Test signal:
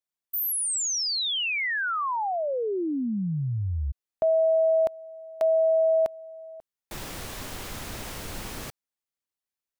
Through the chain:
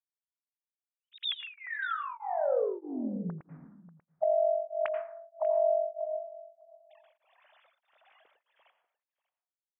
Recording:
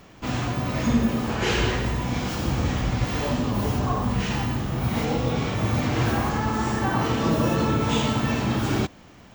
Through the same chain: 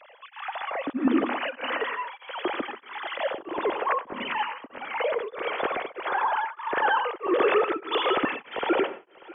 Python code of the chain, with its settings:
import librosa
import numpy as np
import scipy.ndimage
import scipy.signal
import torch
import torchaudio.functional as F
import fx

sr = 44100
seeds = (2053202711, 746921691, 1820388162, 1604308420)

y = fx.sine_speech(x, sr)
y = fx.dynamic_eq(y, sr, hz=690.0, q=2.4, threshold_db=-27.0, ratio=4.0, max_db=-6)
y = y + 10.0 ** (-20.5 / 20.0) * np.pad(y, (int(590 * sr / 1000.0), 0))[:len(y)]
y = fx.rev_plate(y, sr, seeds[0], rt60_s=0.71, hf_ratio=0.4, predelay_ms=75, drr_db=10.0)
y = y * np.abs(np.cos(np.pi * 1.6 * np.arange(len(y)) / sr))